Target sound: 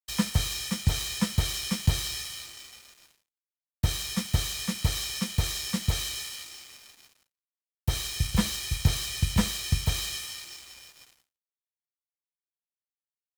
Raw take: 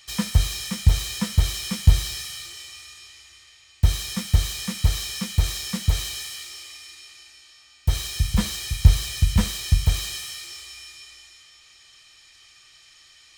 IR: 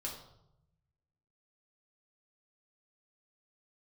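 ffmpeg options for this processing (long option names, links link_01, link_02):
-filter_complex "[0:a]acrossover=split=140|1200|2200[link_01][link_02][link_03][link_04];[link_01]acompressor=threshold=-24dB:ratio=6[link_05];[link_05][link_02][link_03][link_04]amix=inputs=4:normalize=0,aeval=exprs='sgn(val(0))*max(abs(val(0))-0.0075,0)':channel_layout=same,agate=range=-33dB:threshold=-56dB:ratio=3:detection=peak"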